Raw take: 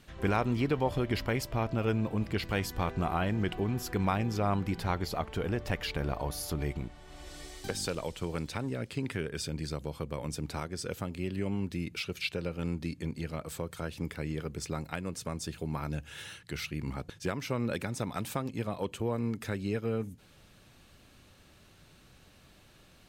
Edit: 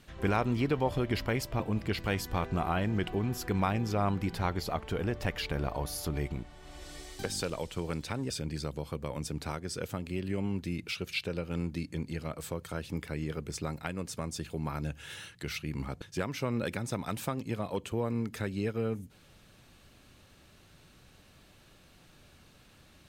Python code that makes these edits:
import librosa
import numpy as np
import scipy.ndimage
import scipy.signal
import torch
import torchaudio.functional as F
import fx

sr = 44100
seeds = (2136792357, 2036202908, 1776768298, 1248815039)

y = fx.edit(x, sr, fx.cut(start_s=1.6, length_s=0.45),
    fx.cut(start_s=8.75, length_s=0.63), tone=tone)